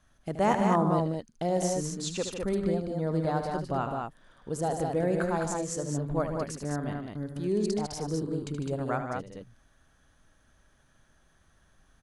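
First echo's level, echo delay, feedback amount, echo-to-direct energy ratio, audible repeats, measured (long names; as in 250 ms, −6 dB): −9.5 dB, 75 ms, repeats not evenly spaced, −2.0 dB, 3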